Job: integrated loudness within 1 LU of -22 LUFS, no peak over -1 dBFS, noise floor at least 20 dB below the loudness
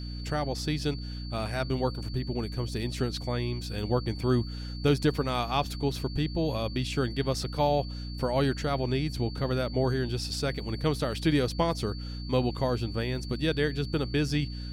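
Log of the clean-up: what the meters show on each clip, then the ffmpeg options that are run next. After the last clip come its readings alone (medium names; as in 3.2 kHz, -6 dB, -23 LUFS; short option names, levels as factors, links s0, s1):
hum 60 Hz; highest harmonic 300 Hz; hum level -34 dBFS; steady tone 4.5 kHz; tone level -45 dBFS; loudness -29.5 LUFS; peak level -11.5 dBFS; loudness target -22.0 LUFS
-> -af "bandreject=f=60:t=h:w=6,bandreject=f=120:t=h:w=6,bandreject=f=180:t=h:w=6,bandreject=f=240:t=h:w=6,bandreject=f=300:t=h:w=6"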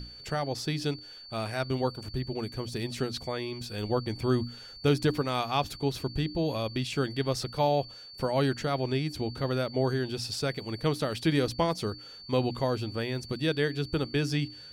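hum not found; steady tone 4.5 kHz; tone level -45 dBFS
-> -af "bandreject=f=4500:w=30"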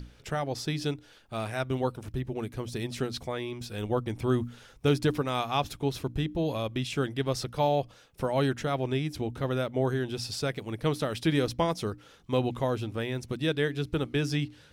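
steady tone not found; loudness -30.5 LUFS; peak level -12.5 dBFS; loudness target -22.0 LUFS
-> -af "volume=2.66"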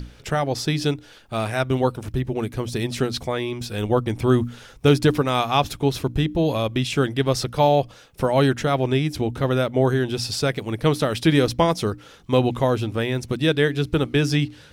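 loudness -22.0 LUFS; peak level -4.0 dBFS; noise floor -47 dBFS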